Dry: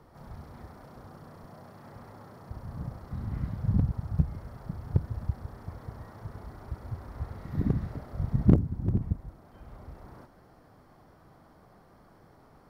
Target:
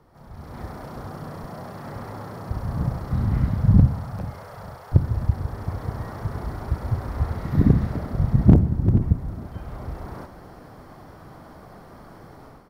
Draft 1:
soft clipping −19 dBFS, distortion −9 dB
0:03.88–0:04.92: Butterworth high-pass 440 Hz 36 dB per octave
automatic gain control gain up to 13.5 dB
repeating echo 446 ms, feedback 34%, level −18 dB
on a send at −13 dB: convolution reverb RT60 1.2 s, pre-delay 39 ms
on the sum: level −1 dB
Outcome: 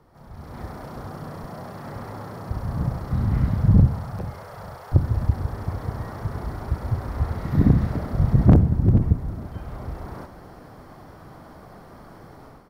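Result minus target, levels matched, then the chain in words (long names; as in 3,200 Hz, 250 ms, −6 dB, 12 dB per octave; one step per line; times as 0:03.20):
soft clipping: distortion +7 dB
soft clipping −12 dBFS, distortion −16 dB
0:03.88–0:04.92: Butterworth high-pass 440 Hz 36 dB per octave
automatic gain control gain up to 13.5 dB
repeating echo 446 ms, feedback 34%, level −18 dB
on a send at −13 dB: convolution reverb RT60 1.2 s, pre-delay 39 ms
on the sum: level −1 dB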